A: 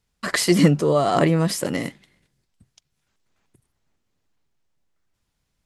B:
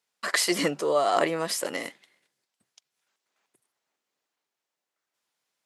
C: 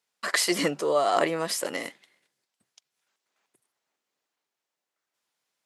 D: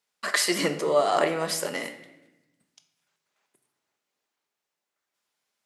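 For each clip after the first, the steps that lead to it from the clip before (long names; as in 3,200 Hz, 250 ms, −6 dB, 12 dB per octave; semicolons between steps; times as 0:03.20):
high-pass filter 490 Hz 12 dB per octave; level −2 dB
no processing that can be heard
convolution reverb RT60 0.95 s, pre-delay 5 ms, DRR 6.5 dB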